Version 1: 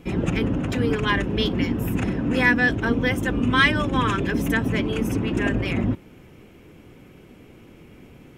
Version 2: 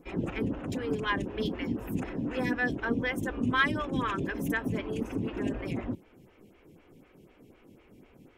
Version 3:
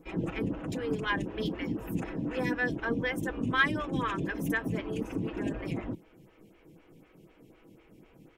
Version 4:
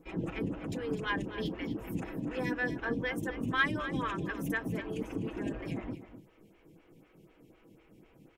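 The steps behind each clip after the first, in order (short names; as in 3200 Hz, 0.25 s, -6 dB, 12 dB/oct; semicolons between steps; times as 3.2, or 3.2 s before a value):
photocell phaser 4 Hz; gain -6 dB
comb 6.2 ms, depth 35%; gain -1 dB
echo 0.251 s -12.5 dB; gain -3 dB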